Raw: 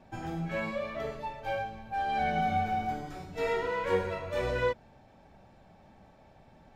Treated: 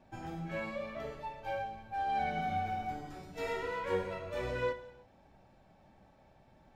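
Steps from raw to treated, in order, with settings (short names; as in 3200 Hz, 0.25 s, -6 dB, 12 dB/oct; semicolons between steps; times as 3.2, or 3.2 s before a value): 3.23–3.8 high shelf 4900 Hz +5 dB; non-linear reverb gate 0.36 s falling, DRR 10.5 dB; gain -5.5 dB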